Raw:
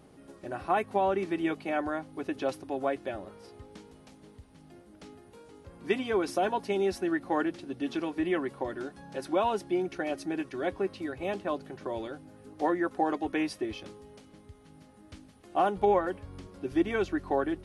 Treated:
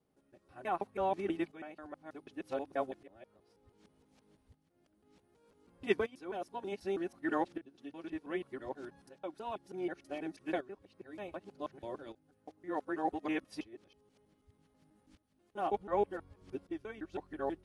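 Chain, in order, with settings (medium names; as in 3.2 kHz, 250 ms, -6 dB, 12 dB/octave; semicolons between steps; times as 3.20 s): time reversed locally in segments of 162 ms; tremolo saw up 0.66 Hz, depth 70%; upward expansion 1.5:1, over -46 dBFS; trim -1.5 dB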